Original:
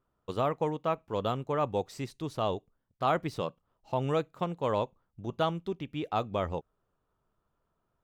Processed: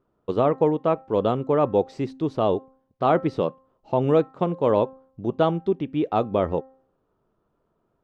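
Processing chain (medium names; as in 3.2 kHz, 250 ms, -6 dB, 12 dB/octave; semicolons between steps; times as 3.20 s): low-pass 4.8 kHz 12 dB/octave; peaking EQ 340 Hz +11.5 dB 2.6 oct; de-hum 263.8 Hz, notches 7; trim +1 dB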